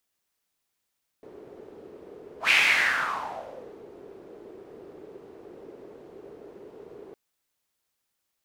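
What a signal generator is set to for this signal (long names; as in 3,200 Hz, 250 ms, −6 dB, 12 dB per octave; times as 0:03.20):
pass-by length 5.91 s, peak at 0:01.27, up 0.12 s, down 1.39 s, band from 410 Hz, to 2,400 Hz, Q 4.9, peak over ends 26 dB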